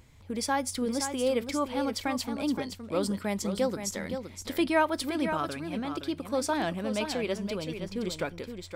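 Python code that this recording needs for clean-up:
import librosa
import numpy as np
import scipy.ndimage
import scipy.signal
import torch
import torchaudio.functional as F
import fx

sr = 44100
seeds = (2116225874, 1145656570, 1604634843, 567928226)

y = fx.fix_interpolate(x, sr, at_s=(4.42,), length_ms=1.6)
y = fx.fix_echo_inverse(y, sr, delay_ms=519, level_db=-8.0)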